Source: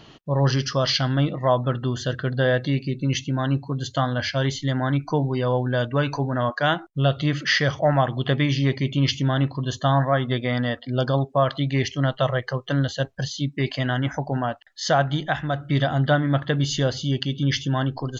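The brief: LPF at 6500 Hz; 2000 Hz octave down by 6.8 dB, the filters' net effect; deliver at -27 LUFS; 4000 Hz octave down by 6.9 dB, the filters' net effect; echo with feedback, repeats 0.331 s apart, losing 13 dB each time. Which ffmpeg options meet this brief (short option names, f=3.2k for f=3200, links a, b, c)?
-af "lowpass=6.5k,equalizer=f=2k:t=o:g=-8,equalizer=f=4k:t=o:g=-5.5,aecho=1:1:331|662|993:0.224|0.0493|0.0108,volume=-3dB"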